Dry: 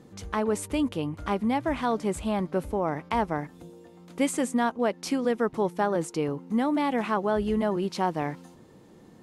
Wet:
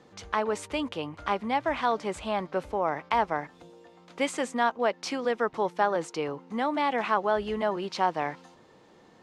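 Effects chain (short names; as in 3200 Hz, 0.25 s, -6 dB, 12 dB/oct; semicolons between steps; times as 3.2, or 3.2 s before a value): three-band isolator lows -12 dB, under 490 Hz, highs -19 dB, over 6600 Hz; gain +3 dB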